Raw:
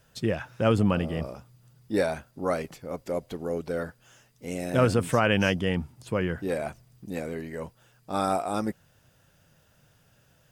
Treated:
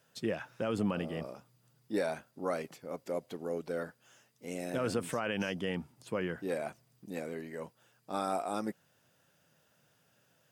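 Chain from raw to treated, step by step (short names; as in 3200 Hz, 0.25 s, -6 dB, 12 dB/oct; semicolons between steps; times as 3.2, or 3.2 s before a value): HPF 180 Hz 12 dB/oct; limiter -16.5 dBFS, peak gain reduction 8 dB; gain -5.5 dB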